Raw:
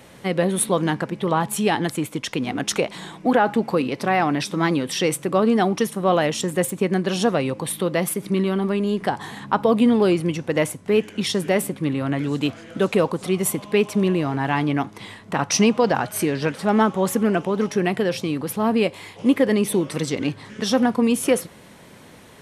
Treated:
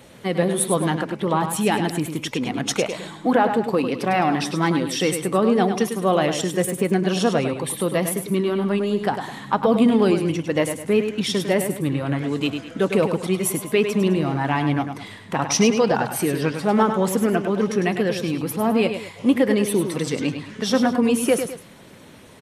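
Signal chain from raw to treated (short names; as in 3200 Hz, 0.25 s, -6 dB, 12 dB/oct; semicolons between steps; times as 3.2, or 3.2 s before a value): bin magnitudes rounded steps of 15 dB; tapped delay 0.102/0.209 s -8/-17 dB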